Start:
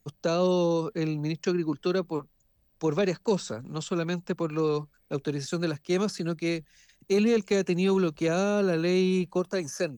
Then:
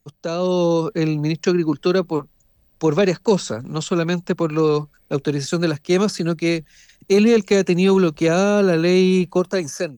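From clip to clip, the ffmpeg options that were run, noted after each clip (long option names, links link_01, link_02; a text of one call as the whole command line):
ffmpeg -i in.wav -af "dynaudnorm=framelen=220:gausssize=5:maxgain=9dB" out.wav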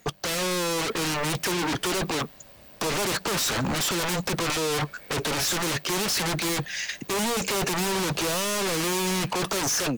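ffmpeg -i in.wav -filter_complex "[0:a]asplit=2[link_01][link_02];[link_02]highpass=frequency=720:poles=1,volume=31dB,asoftclip=type=tanh:threshold=-6dB[link_03];[link_01][link_03]amix=inputs=2:normalize=0,lowpass=frequency=3500:poles=1,volume=-6dB,aeval=exprs='0.119*(abs(mod(val(0)/0.119+3,4)-2)-1)':channel_layout=same,volume=-2.5dB" out.wav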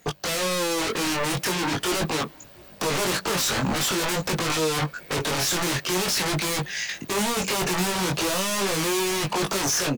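ffmpeg -i in.wav -filter_complex "[0:a]flanger=delay=19:depth=3.3:speed=0.44,asplit=2[link_01][link_02];[link_02]adelay=699.7,volume=-27dB,highshelf=frequency=4000:gain=-15.7[link_03];[link_01][link_03]amix=inputs=2:normalize=0,volume=4.5dB" out.wav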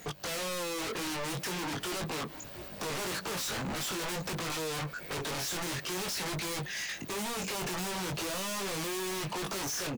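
ffmpeg -i in.wav -af "asoftclip=type=hard:threshold=-29dB,alimiter=level_in=16dB:limit=-24dB:level=0:latency=1:release=137,volume=-16dB,volume=6.5dB" out.wav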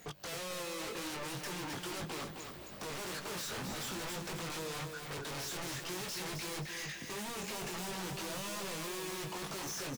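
ffmpeg -i in.wav -af "aecho=1:1:264|528|792|1056|1320:0.501|0.19|0.0724|0.0275|0.0105,volume=-6.5dB" out.wav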